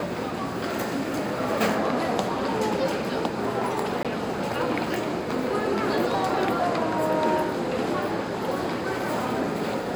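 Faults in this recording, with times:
0:04.03–0:04.05: drop-out 17 ms

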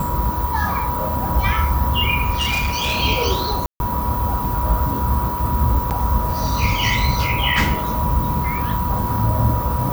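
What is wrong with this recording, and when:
whistle 970 Hz −24 dBFS
0:02.33–0:03.00: clipping −16.5 dBFS
0:03.66–0:03.80: drop-out 141 ms
0:05.90–0:05.91: drop-out 8.7 ms

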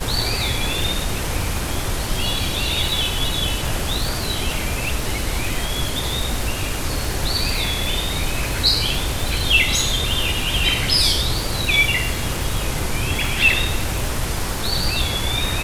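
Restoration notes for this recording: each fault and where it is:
surface crackle 160 per second −24 dBFS

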